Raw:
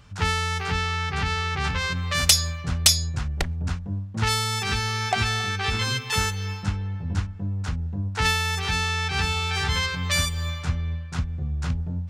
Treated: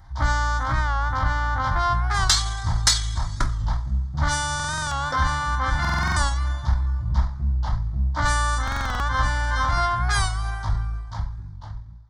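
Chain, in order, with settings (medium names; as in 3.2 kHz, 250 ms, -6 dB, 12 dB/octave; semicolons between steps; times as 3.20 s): fade out at the end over 1.57 s; two-slope reverb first 0.32 s, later 1.8 s, from -18 dB, DRR 1 dB; in parallel at -6 dB: saturation -12 dBFS, distortion -17 dB; on the sum: pitch shift -7 st; static phaser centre 1.1 kHz, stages 4; buffer glitch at 4.55/5.80/8.63 s, samples 2048, times 7; warped record 45 rpm, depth 100 cents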